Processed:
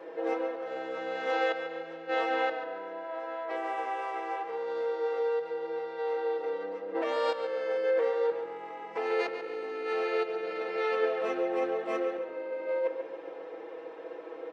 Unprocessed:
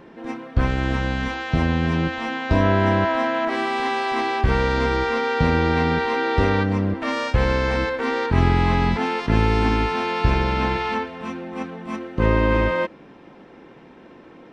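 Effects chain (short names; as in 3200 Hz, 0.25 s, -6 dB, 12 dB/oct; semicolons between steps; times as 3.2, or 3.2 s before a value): high shelf 3800 Hz -7 dB; comb 6.2 ms, depth 93%; negative-ratio compressor -27 dBFS, ratio -1; ladder high-pass 420 Hz, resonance 60%; on a send: tape echo 0.141 s, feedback 50%, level -8 dB, low-pass 4700 Hz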